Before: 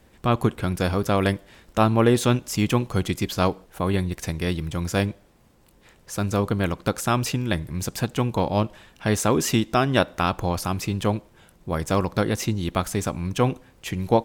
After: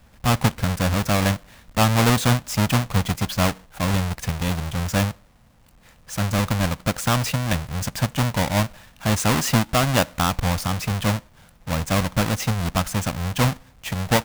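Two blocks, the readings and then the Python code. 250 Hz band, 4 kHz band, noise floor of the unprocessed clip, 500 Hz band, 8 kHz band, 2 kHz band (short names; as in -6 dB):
0.0 dB, +5.0 dB, -57 dBFS, -3.0 dB, +4.5 dB, +4.5 dB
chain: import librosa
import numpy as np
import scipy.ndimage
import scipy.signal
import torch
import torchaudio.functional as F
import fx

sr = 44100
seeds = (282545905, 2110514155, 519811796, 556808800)

y = fx.halfwave_hold(x, sr)
y = fx.peak_eq(y, sr, hz=370.0, db=-12.5, octaves=0.64)
y = y * 10.0 ** (-1.5 / 20.0)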